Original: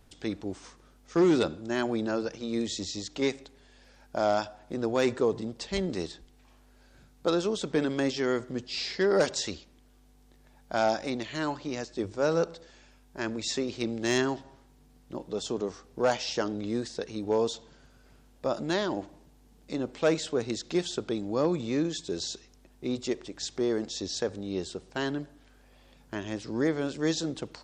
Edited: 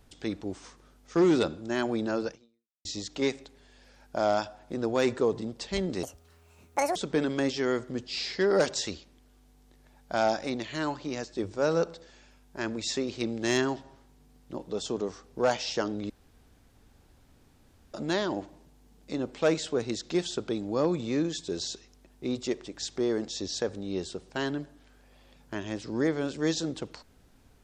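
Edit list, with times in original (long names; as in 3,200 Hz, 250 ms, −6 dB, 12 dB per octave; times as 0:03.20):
0:02.30–0:02.85: fade out exponential
0:06.03–0:07.56: play speed 165%
0:16.70–0:18.54: fill with room tone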